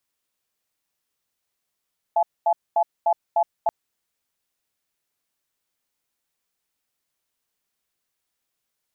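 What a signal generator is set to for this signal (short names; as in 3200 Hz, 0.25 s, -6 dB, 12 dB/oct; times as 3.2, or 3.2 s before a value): cadence 682 Hz, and 854 Hz, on 0.07 s, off 0.23 s, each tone -18.5 dBFS 1.53 s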